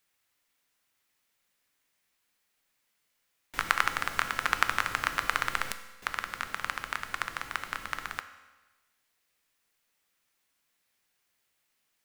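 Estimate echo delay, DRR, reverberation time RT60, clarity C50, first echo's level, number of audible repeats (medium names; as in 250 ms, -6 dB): no echo, 9.5 dB, 1.2 s, 12.0 dB, no echo, no echo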